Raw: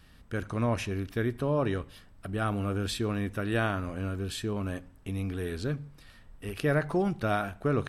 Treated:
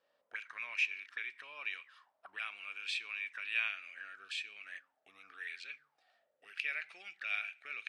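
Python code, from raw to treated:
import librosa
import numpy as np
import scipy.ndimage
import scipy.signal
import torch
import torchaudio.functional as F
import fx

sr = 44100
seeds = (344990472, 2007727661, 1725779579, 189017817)

y = fx.weighting(x, sr, curve='ITU-R 468')
y = fx.auto_wah(y, sr, base_hz=480.0, top_hz=2400.0, q=9.0, full_db=-33.5, direction='up')
y = fx.peak_eq(y, sr, hz=1000.0, db=fx.steps((0.0, 4.0), (3.69, -12.0)), octaves=0.3)
y = F.gain(torch.from_numpy(y), 4.5).numpy()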